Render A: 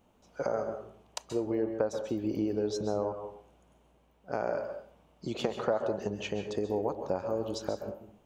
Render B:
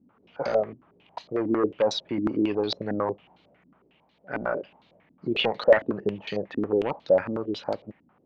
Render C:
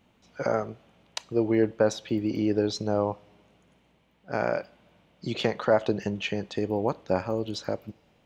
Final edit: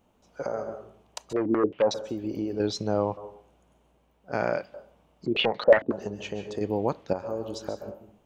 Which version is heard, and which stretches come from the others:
A
0:01.33–0:01.94: punch in from B
0:02.60–0:03.17: punch in from C
0:04.33–0:04.74: punch in from C
0:05.26–0:05.92: punch in from B
0:06.61–0:07.13: punch in from C

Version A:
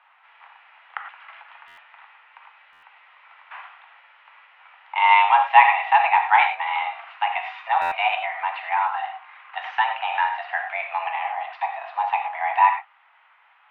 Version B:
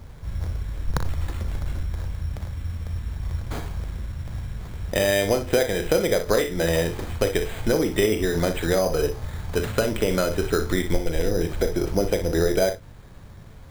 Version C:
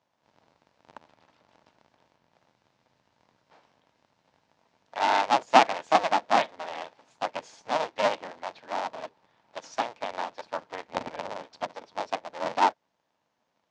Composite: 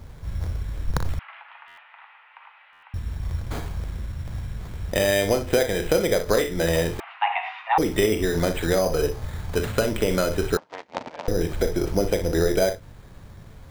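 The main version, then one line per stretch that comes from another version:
B
0:01.19–0:02.94: punch in from A
0:07.00–0:07.78: punch in from A
0:10.57–0:11.28: punch in from C

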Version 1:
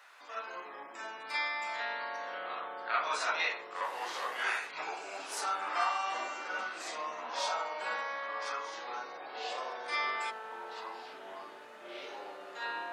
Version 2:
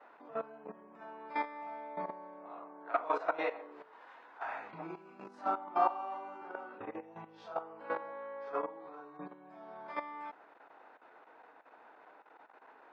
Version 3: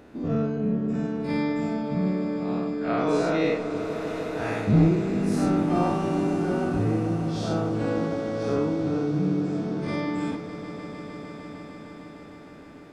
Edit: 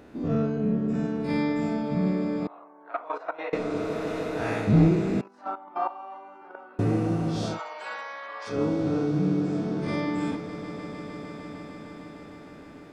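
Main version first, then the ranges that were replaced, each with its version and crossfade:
3
0:02.47–0:03.53: punch in from 2
0:05.21–0:06.79: punch in from 2
0:07.52–0:08.54: punch in from 1, crossfade 0.16 s

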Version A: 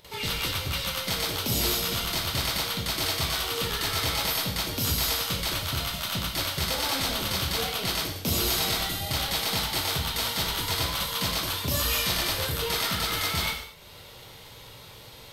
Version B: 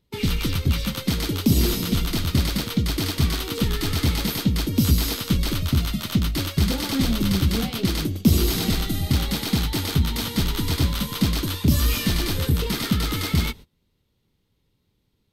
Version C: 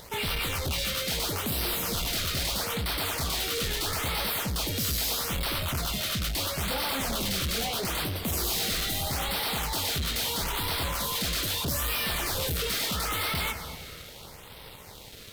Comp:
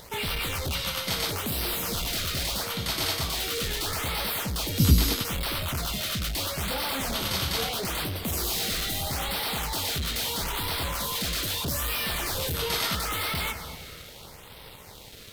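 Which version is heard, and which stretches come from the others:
C
0:00.75–0:01.31: punch in from A
0:02.71–0:03.25: punch in from A, crossfade 0.24 s
0:04.80–0:05.25: punch in from B
0:07.14–0:07.69: punch in from A
0:12.54–0:12.95: punch in from A

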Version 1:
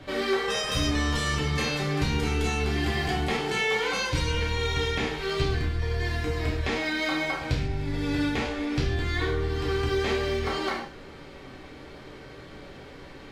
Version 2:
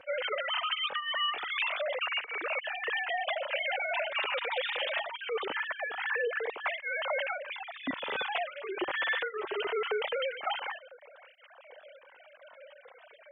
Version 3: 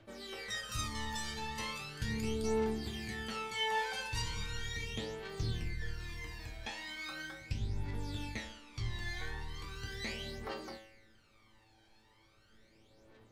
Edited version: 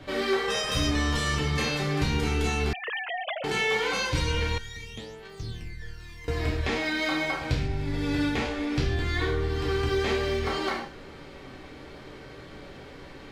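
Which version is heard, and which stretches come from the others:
1
0:02.73–0:03.44: punch in from 2
0:04.58–0:06.28: punch in from 3

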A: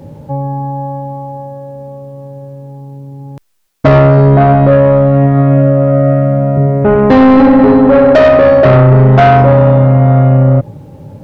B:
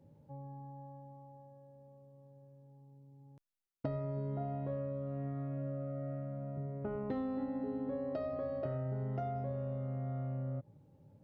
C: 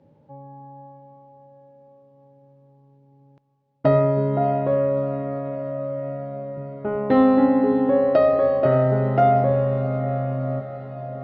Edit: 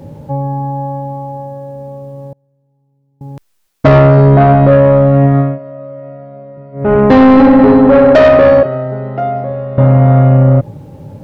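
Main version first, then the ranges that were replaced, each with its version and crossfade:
A
0:02.33–0:03.21: punch in from B
0:05.47–0:06.84: punch in from C, crossfade 0.24 s
0:08.63–0:09.78: punch in from C

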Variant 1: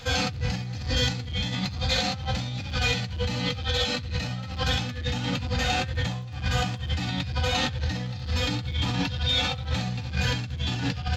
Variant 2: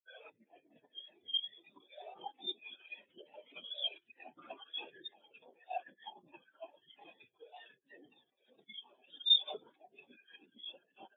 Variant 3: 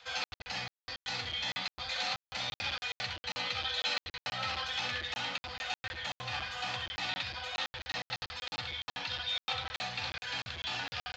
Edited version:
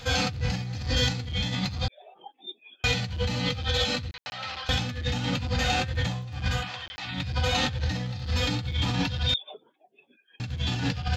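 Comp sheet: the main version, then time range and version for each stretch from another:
1
0:01.88–0:02.84: punch in from 2
0:04.11–0:04.69: punch in from 3
0:06.60–0:07.14: punch in from 3, crossfade 0.24 s
0:09.34–0:10.40: punch in from 2

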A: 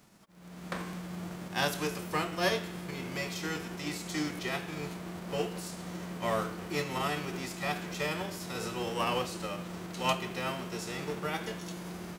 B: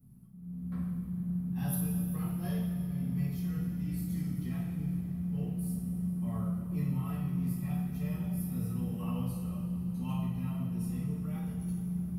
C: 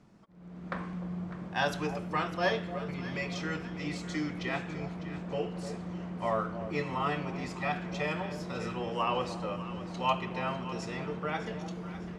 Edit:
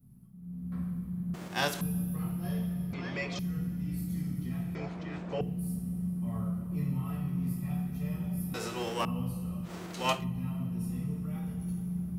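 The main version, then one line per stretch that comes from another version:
B
0:01.34–0:01.81: punch in from A
0:02.93–0:03.39: punch in from C
0:04.75–0:05.41: punch in from C
0:08.54–0:09.05: punch in from A
0:09.67–0:10.20: punch in from A, crossfade 0.10 s

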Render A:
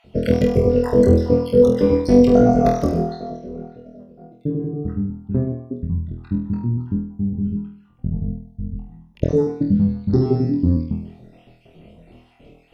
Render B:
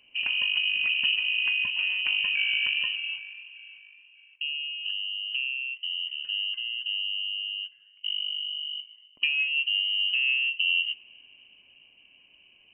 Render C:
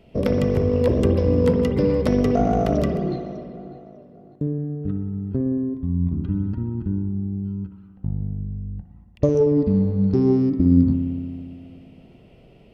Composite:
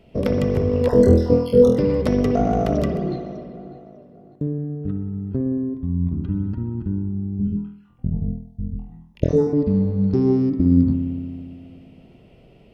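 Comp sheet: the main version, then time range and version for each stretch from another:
C
0:00.89–0:01.78: punch in from A
0:07.39–0:09.53: punch in from A
not used: B

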